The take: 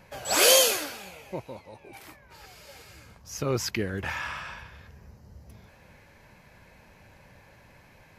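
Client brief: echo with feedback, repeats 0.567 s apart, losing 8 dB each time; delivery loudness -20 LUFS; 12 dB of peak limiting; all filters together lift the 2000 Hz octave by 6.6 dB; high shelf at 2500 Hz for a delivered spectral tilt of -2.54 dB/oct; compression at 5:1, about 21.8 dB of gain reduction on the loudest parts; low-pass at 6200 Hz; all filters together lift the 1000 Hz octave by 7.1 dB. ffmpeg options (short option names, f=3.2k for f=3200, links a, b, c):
-af "lowpass=6.2k,equalizer=f=1k:t=o:g=7,equalizer=f=2k:t=o:g=3,highshelf=f=2.5k:g=7,acompressor=threshold=-37dB:ratio=5,alimiter=level_in=10dB:limit=-24dB:level=0:latency=1,volume=-10dB,aecho=1:1:567|1134|1701|2268|2835:0.398|0.159|0.0637|0.0255|0.0102,volume=24dB"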